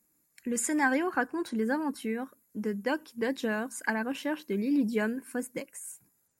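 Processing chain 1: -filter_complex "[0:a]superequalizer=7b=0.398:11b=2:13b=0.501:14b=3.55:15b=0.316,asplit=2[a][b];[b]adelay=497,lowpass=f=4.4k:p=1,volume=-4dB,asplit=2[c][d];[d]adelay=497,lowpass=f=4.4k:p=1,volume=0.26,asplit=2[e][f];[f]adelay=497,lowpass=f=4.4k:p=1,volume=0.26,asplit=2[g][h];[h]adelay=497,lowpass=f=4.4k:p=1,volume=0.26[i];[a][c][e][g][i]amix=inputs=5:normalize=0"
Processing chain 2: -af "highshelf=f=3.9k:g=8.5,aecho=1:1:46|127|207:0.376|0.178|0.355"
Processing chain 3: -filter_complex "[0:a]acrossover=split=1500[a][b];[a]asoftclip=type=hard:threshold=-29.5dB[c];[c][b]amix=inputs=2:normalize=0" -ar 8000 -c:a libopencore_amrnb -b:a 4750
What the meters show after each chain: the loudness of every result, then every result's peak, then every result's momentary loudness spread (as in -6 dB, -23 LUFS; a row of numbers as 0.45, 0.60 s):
-28.5, -29.0, -35.0 LUFS; -10.5, -10.0, -19.0 dBFS; 11, 10, 8 LU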